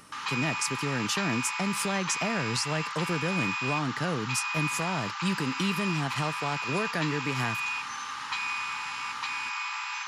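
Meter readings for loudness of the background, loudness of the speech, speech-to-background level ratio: -32.0 LUFS, -31.0 LUFS, 1.0 dB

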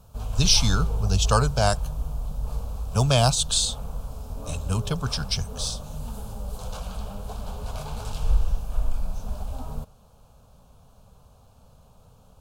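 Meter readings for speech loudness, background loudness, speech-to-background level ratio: -23.5 LUFS, -33.0 LUFS, 9.5 dB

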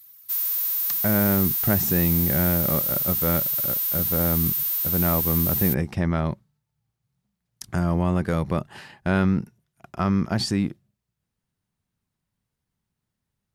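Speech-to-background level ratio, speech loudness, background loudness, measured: -3.5 dB, -25.5 LUFS, -22.0 LUFS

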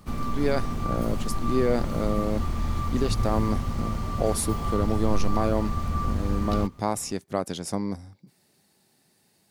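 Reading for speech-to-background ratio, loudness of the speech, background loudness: 1.5 dB, -29.0 LUFS, -30.5 LUFS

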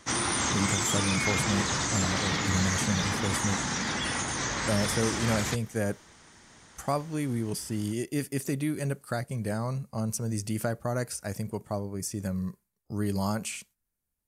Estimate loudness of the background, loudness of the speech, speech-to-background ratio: -28.5 LUFS, -32.0 LUFS, -3.5 dB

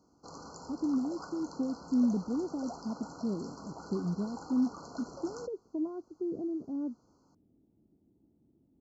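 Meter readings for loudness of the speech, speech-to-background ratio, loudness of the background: -35.0 LUFS, 12.5 dB, -47.5 LUFS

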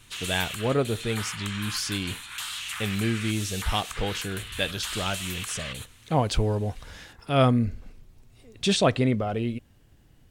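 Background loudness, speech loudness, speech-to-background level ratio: -34.5 LUFS, -27.5 LUFS, 7.0 dB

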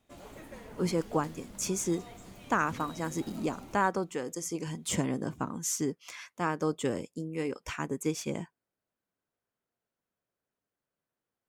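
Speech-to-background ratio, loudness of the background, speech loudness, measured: 15.5 dB, -48.5 LUFS, -33.0 LUFS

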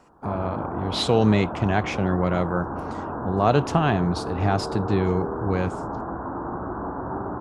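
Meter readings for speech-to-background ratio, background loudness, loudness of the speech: 7.5 dB, -31.5 LUFS, -24.0 LUFS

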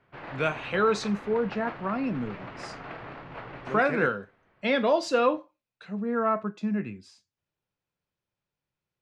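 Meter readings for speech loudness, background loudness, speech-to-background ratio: -27.5 LUFS, -41.5 LUFS, 14.0 dB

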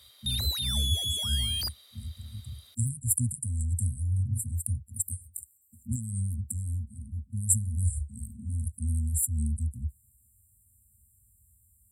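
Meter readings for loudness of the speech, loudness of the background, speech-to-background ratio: -31.5 LUFS, -29.0 LUFS, -2.5 dB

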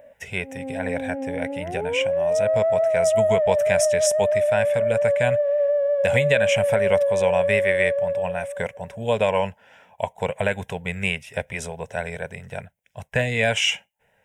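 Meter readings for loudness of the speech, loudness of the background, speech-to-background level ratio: -26.0 LUFS, -22.0 LUFS, -4.0 dB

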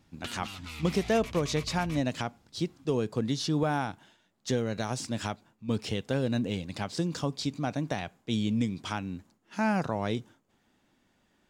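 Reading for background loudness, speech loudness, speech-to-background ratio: -42.0 LUFS, -31.5 LUFS, 10.5 dB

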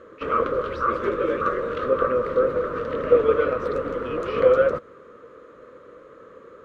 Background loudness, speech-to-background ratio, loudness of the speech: -24.5 LUFS, -3.0 dB, -27.5 LUFS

